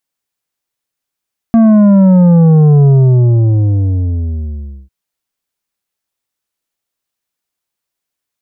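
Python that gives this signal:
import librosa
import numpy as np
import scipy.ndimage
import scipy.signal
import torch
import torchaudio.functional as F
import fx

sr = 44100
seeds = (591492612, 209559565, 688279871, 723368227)

y = fx.sub_drop(sr, level_db=-4.5, start_hz=230.0, length_s=3.35, drive_db=8, fade_s=2.04, end_hz=65.0)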